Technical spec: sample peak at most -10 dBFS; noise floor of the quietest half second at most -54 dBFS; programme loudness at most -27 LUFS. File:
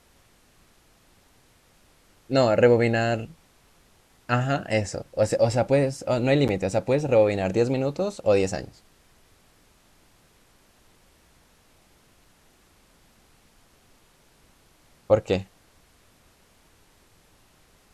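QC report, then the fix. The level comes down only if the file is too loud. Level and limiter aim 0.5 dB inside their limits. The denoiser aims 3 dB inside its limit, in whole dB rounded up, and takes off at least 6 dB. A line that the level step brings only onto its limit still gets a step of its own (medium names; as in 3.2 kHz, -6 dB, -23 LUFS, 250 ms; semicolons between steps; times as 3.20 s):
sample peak -6.0 dBFS: fail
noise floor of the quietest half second -59 dBFS: pass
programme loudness -23.5 LUFS: fail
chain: trim -4 dB; peak limiter -10.5 dBFS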